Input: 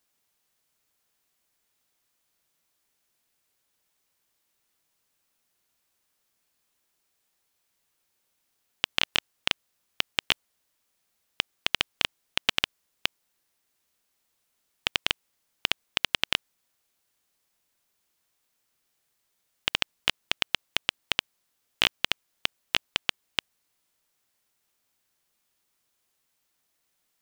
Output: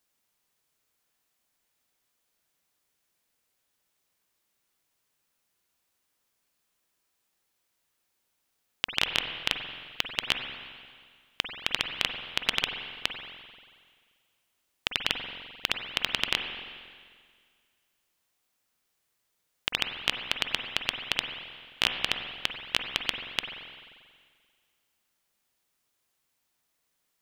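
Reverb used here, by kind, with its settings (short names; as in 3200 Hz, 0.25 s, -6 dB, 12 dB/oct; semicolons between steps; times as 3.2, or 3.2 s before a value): spring tank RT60 1.9 s, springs 44/48 ms, chirp 75 ms, DRR 4.5 dB; gain -2 dB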